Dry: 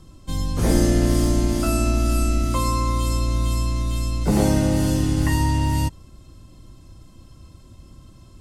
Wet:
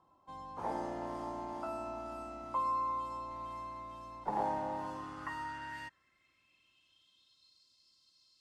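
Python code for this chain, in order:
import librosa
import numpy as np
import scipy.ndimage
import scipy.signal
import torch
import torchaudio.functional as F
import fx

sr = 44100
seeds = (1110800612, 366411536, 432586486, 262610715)

y = fx.filter_sweep_bandpass(x, sr, from_hz=890.0, to_hz=4500.0, start_s=4.67, end_s=7.62, q=6.4)
y = fx.running_max(y, sr, window=3, at=(3.31, 4.85))
y = y * 10.0 ** (1.5 / 20.0)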